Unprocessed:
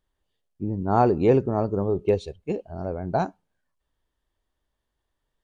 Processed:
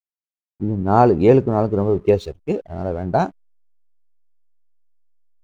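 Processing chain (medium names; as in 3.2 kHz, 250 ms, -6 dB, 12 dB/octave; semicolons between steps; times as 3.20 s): hysteresis with a dead band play -46.5 dBFS; trim +6 dB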